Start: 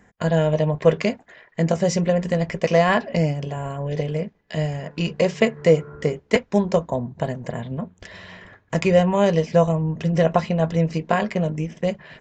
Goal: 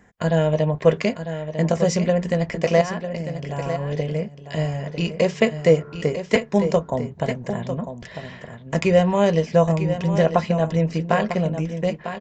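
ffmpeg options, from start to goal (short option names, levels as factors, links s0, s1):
-filter_complex "[0:a]asettb=1/sr,asplit=3[s0][s1][s2];[s0]atrim=end=2.814[s3];[s1]atrim=start=2.81:end=3.49,asetpts=PTS-STARTPTS,afade=t=in:d=0.004:c=qsin,afade=t=out:st=0.676:d=0.004:c=qsin,acompressor=threshold=0.0501:ratio=12[s4];[s2]atrim=start=3.486[s5];[s3][s4]acrossfade=d=0.004:c1=hsin:c2=qsin[s6];[s6][s5]acrossfade=d=0.004:c1=qsin:c2=hsin,asplit=2[s7][s8];[s8]aecho=0:1:949:0.316[s9];[s7][s9]amix=inputs=2:normalize=0"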